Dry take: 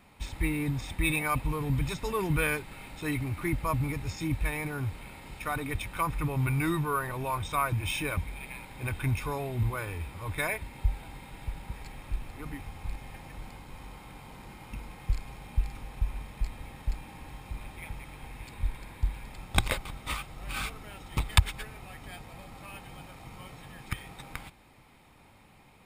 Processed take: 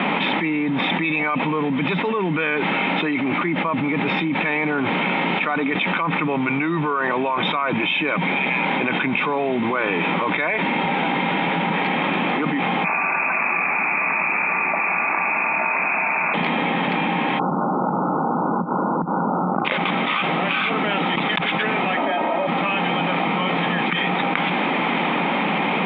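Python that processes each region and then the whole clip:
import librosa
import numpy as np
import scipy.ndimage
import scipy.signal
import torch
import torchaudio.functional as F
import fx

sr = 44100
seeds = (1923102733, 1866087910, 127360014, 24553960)

y = fx.chain(x, sr, fx.cheby_ripple_highpass(hz=640.0, ripple_db=3),
    fx.freq_invert(carrier_hz=3300), at=(12.84, 16.34))
y = fx.chain(y, sr, fx.brickwall_lowpass(high_hz=1500.0),
    fx.over_compress(threshold_db=-39.0, ratio=-1.0), at=(17.39, 19.65))
y = fx.chain(y, sr, fx.peak_eq(hz=640.0, db=12.5, octaves=2.1),
    fx.comb(ms=3.2, depth=0.54), at=(21.97, 22.47))
y = scipy.signal.sosfilt(scipy.signal.cheby1(5, 1.0, [170.0, 3400.0], 'bandpass', fs=sr, output='sos'), y)
y = fx.env_flatten(y, sr, amount_pct=100)
y = y * 10.0 ** (3.0 / 20.0)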